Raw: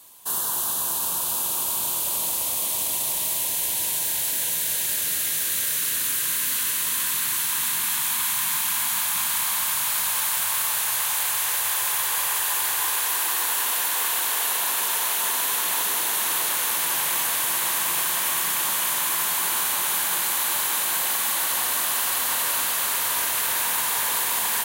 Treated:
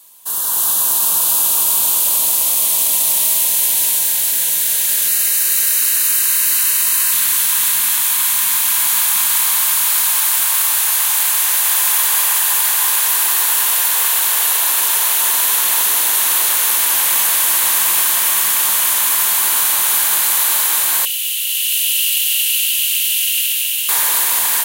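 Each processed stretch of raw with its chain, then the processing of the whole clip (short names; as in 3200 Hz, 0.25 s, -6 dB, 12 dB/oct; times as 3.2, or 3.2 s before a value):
5.08–7.13 Butterworth band-stop 3400 Hz, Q 6.8 + low shelf 190 Hz -7.5 dB
21.05–23.89 ladder high-pass 2700 Hz, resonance 80% + high shelf 5400 Hz +7.5 dB
whole clip: HPF 57 Hz; tilt +1.5 dB/oct; AGC; gain -1 dB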